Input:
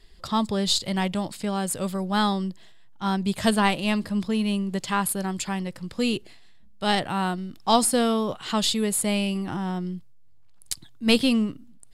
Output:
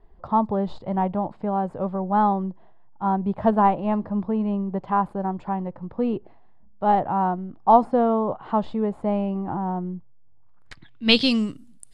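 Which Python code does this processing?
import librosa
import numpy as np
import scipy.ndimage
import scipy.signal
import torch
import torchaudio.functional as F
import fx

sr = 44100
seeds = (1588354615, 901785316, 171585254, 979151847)

y = fx.filter_sweep_lowpass(x, sr, from_hz=870.0, to_hz=10000.0, start_s=10.39, end_s=11.61, q=2.4)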